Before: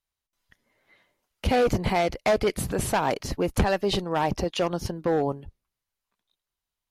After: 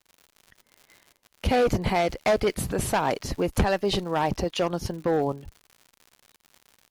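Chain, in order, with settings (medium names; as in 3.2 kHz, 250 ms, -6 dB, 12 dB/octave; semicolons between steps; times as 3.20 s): crackle 140 per s -39 dBFS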